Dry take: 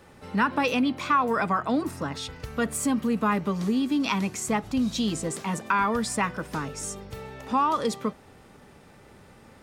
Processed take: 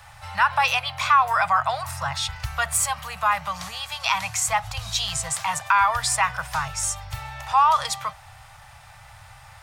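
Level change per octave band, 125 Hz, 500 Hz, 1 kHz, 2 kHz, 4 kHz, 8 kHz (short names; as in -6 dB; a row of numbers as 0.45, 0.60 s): -0.5, -5.5, +6.5, +6.5, +8.0, +9.0 dB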